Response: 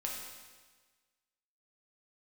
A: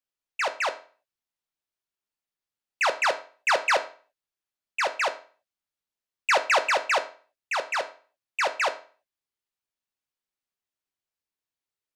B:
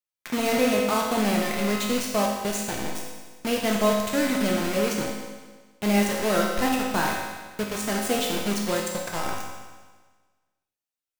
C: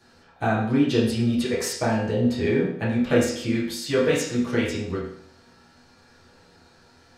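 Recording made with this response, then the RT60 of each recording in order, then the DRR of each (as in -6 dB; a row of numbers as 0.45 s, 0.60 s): B; 0.40 s, 1.4 s, 0.65 s; 7.0 dB, -2.5 dB, -9.5 dB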